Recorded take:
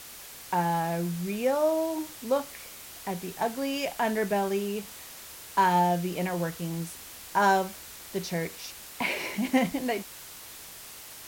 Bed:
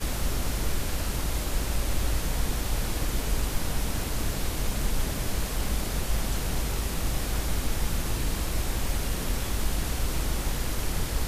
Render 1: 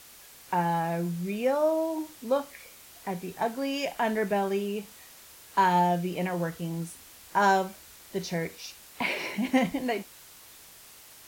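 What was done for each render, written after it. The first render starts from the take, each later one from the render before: noise print and reduce 6 dB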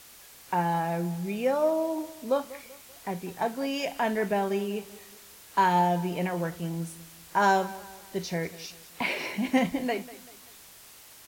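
feedback delay 193 ms, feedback 42%, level -18 dB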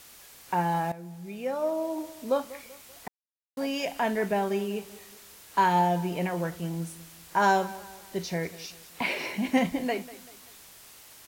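0.92–2.21 s: fade in, from -15 dB; 3.08–3.57 s: mute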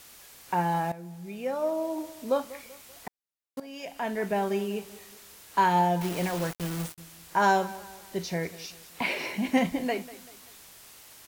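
3.60–4.44 s: fade in linear, from -17 dB; 6.01–6.98 s: word length cut 6-bit, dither none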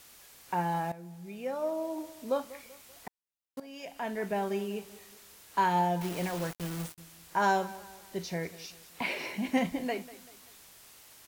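trim -4 dB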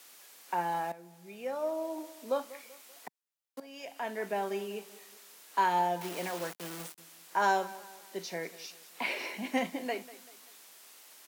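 Bessel high-pass 320 Hz, order 8

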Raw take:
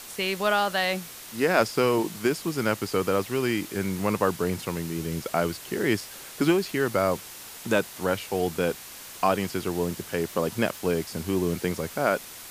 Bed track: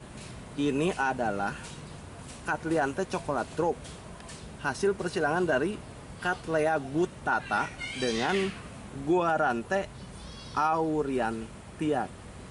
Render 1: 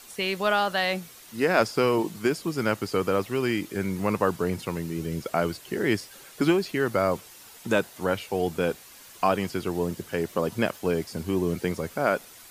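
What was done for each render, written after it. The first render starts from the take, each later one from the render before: noise reduction 8 dB, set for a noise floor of -43 dBFS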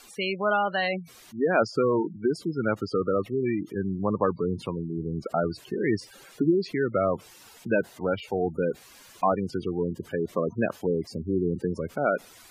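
spectral gate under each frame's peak -15 dB strong; treble shelf 10 kHz -9 dB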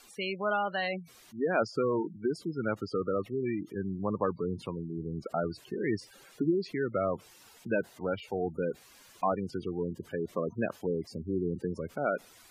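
trim -5.5 dB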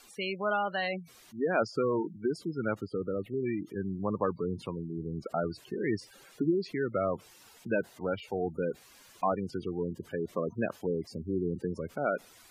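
2.81–3.34 s: static phaser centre 2.5 kHz, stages 4

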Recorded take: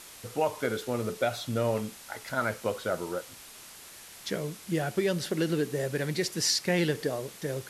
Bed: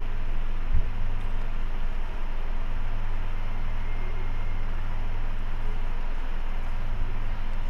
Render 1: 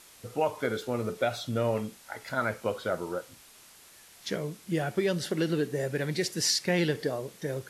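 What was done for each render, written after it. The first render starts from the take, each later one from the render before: noise print and reduce 6 dB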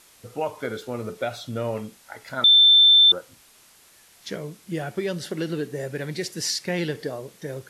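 2.44–3.12 s: bleep 3.55 kHz -10.5 dBFS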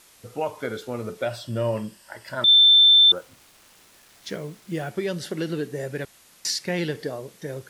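1.25–2.48 s: rippled EQ curve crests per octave 1.3, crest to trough 9 dB; 3.16–4.90 s: send-on-delta sampling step -49.5 dBFS; 6.05–6.45 s: room tone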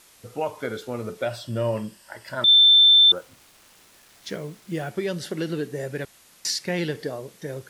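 no audible change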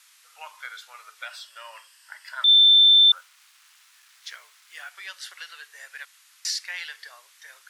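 inverse Chebyshev high-pass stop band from 260 Hz, stop band 70 dB; treble shelf 9.2 kHz -6 dB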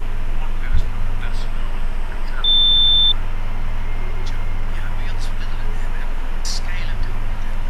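add bed +6.5 dB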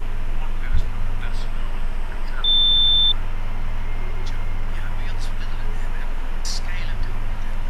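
trim -2.5 dB

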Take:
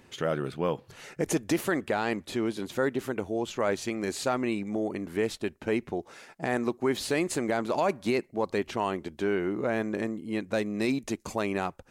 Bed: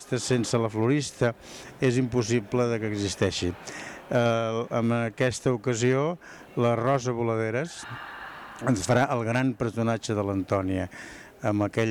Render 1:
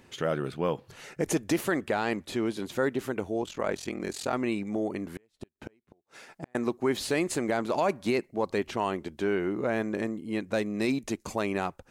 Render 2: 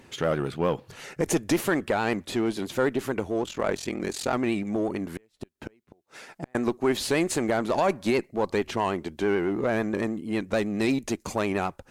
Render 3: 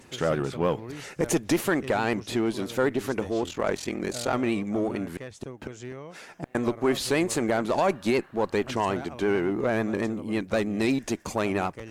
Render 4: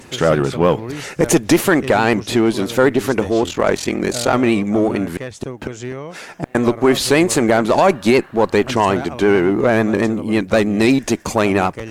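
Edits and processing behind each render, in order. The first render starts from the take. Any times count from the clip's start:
3.42–4.33 s: ring modulator 21 Hz; 5.08–6.55 s: inverted gate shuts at -26 dBFS, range -39 dB
vibrato 9.1 Hz 49 cents; in parallel at -4 dB: one-sided clip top -33 dBFS
add bed -16 dB
trim +11 dB; peak limiter -3 dBFS, peak gain reduction 1 dB

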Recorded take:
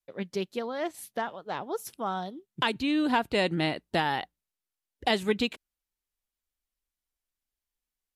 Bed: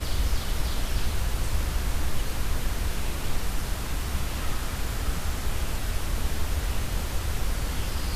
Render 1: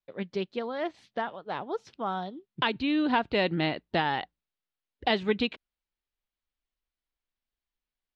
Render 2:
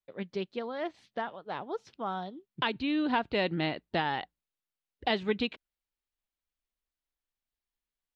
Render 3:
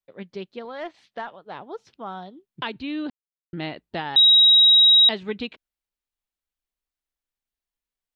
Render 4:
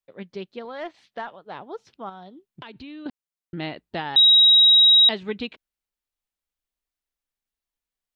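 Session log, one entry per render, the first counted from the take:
low-pass 4.4 kHz 24 dB/octave
trim -3 dB
0.65–1.31 s: overdrive pedal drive 9 dB, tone 5.3 kHz, clips at -22 dBFS; 3.10–3.53 s: mute; 4.16–5.09 s: bleep 3.82 kHz -10.5 dBFS
2.09–3.06 s: compression 4:1, threshold -38 dBFS

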